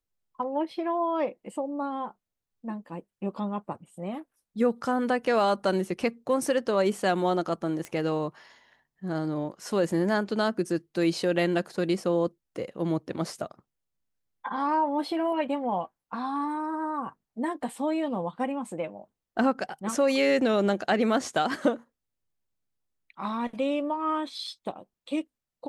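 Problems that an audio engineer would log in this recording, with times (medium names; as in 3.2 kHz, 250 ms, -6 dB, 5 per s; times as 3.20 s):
7.85 s: pop -21 dBFS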